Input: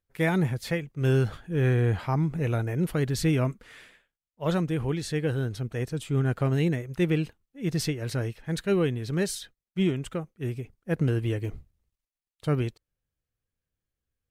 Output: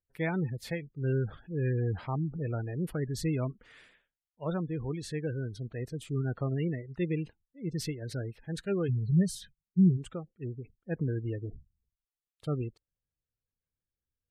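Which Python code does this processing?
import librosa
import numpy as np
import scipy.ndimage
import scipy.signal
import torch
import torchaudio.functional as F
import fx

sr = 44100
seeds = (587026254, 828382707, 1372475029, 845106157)

y = fx.low_shelf_res(x, sr, hz=220.0, db=7.0, q=3.0, at=(8.88, 9.96), fade=0.02)
y = fx.spec_gate(y, sr, threshold_db=-25, keep='strong')
y = y * 10.0 ** (-6.5 / 20.0)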